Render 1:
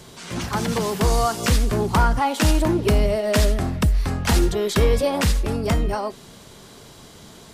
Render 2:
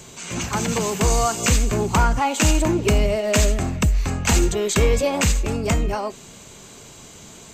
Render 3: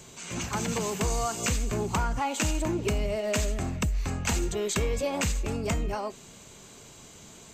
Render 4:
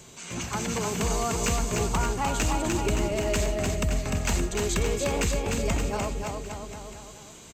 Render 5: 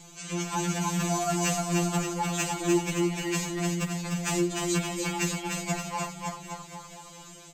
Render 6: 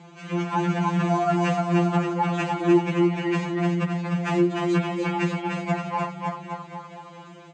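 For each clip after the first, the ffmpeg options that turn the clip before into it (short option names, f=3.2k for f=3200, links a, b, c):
-af "superequalizer=12b=1.78:15b=2.82:16b=0.447"
-af "acompressor=threshold=-17dB:ratio=6,volume=-6.5dB"
-filter_complex "[0:a]asoftclip=type=hard:threshold=-19.5dB,asplit=2[a][b];[b]aecho=0:1:300|570|813|1032|1229:0.631|0.398|0.251|0.158|0.1[c];[a][c]amix=inputs=2:normalize=0"
-af "afftfilt=real='re*2.83*eq(mod(b,8),0)':imag='im*2.83*eq(mod(b,8),0)':win_size=2048:overlap=0.75,volume=1.5dB"
-af "highpass=120,lowpass=2k,volume=6.5dB"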